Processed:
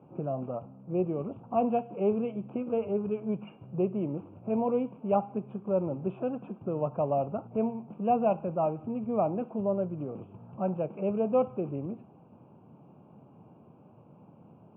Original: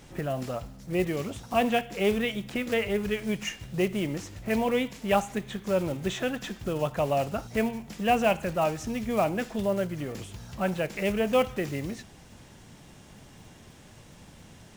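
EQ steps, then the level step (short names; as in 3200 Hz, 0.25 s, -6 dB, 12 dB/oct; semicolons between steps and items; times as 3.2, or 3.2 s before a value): HPF 120 Hz 24 dB/oct; Butterworth band-stop 1900 Hz, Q 0.83; steep low-pass 2500 Hz 72 dB/oct; -1.5 dB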